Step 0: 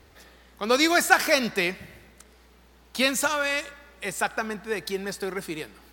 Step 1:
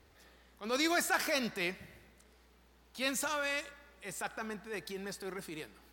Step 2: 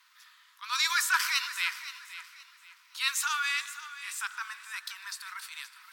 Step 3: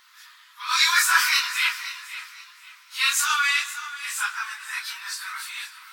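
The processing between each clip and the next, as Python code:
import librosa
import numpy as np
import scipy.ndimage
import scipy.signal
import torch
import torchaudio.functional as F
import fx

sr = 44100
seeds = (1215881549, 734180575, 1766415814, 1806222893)

y1 = fx.transient(x, sr, attack_db=-8, sustain_db=0)
y1 = y1 * librosa.db_to_amplitude(-8.5)
y2 = scipy.signal.sosfilt(scipy.signal.cheby1(6, 3, 960.0, 'highpass', fs=sr, output='sos'), y1)
y2 = fx.echo_feedback(y2, sr, ms=522, feedback_pct=29, wet_db=-14)
y2 = fx.echo_warbled(y2, sr, ms=149, feedback_pct=73, rate_hz=2.8, cents=84, wet_db=-22)
y2 = y2 * librosa.db_to_amplitude(8.0)
y3 = fx.phase_scramble(y2, sr, seeds[0], window_ms=100)
y3 = y3 * librosa.db_to_amplitude(8.0)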